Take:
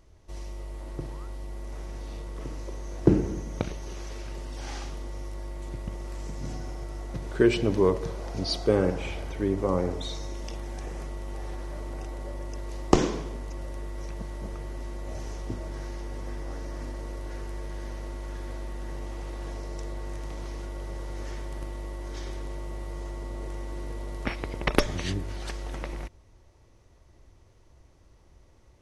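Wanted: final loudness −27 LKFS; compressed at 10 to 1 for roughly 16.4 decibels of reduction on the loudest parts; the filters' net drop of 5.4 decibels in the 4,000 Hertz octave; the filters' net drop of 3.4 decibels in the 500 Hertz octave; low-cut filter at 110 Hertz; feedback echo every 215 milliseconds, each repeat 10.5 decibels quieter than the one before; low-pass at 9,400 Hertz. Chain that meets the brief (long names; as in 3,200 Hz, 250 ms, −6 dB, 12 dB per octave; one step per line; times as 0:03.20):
high-pass filter 110 Hz
low-pass filter 9,400 Hz
parametric band 500 Hz −4.5 dB
parametric band 4,000 Hz −7 dB
downward compressor 10 to 1, threshold −36 dBFS
repeating echo 215 ms, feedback 30%, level −10.5 dB
level +17 dB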